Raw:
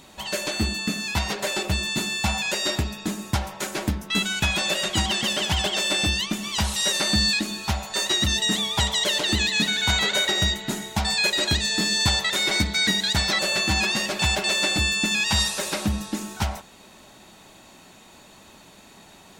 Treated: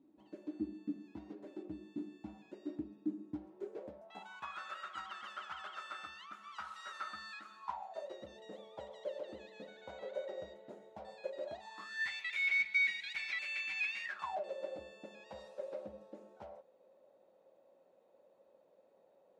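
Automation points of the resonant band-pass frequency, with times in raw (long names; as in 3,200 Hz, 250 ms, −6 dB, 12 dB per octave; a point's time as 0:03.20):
resonant band-pass, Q 14
0:03.44 300 Hz
0:04.57 1,300 Hz
0:07.53 1,300 Hz
0:08.11 530 Hz
0:11.43 530 Hz
0:12.15 2,300 Hz
0:14.02 2,300 Hz
0:14.45 530 Hz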